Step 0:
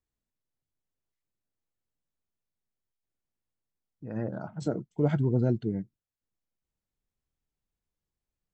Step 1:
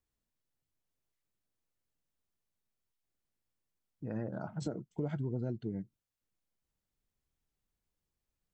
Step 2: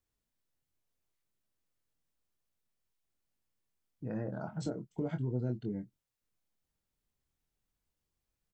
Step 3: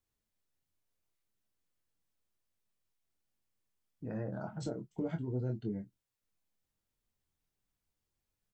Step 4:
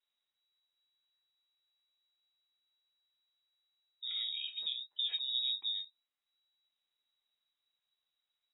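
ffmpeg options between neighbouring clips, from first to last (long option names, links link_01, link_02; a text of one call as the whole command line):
ffmpeg -i in.wav -af "acompressor=threshold=-36dB:ratio=4,volume=1dB" out.wav
ffmpeg -i in.wav -filter_complex "[0:a]asplit=2[link_01][link_02];[link_02]adelay=24,volume=-7dB[link_03];[link_01][link_03]amix=inputs=2:normalize=0" out.wav
ffmpeg -i in.wav -af "flanger=delay=8.5:depth=2.8:regen=-45:speed=0.86:shape=triangular,volume=3dB" out.wav
ffmpeg -i in.wav -af "lowpass=frequency=3300:width_type=q:width=0.5098,lowpass=frequency=3300:width_type=q:width=0.6013,lowpass=frequency=3300:width_type=q:width=0.9,lowpass=frequency=3300:width_type=q:width=2.563,afreqshift=-3900" out.wav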